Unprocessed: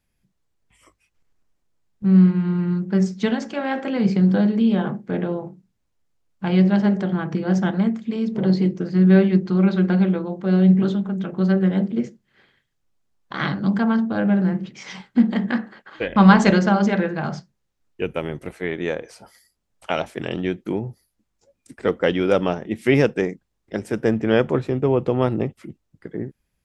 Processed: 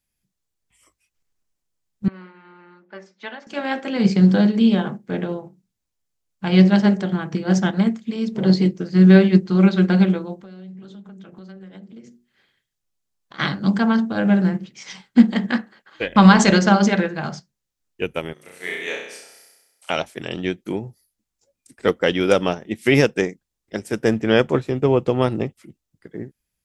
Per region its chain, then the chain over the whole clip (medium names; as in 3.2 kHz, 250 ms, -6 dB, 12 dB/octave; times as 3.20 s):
2.08–3.47 s: band-pass 680–2100 Hz + comb 3.4 ms, depth 38%
10.39–13.39 s: hum notches 60/120/180/240/300/360/420 Hz + compression, threshold -32 dBFS
18.33–19.90 s: high-pass 1.1 kHz 6 dB/octave + flutter echo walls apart 5.6 m, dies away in 1.1 s
whole clip: treble shelf 3.3 kHz +12 dB; loudness maximiser +5 dB; upward expansion 1.5:1, over -33 dBFS